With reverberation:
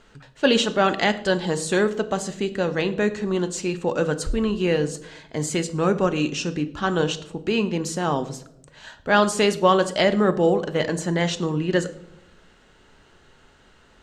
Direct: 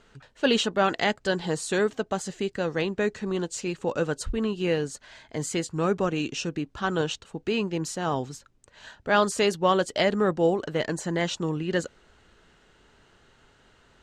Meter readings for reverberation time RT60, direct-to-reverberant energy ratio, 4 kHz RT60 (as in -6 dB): 0.80 s, 10.0 dB, 0.50 s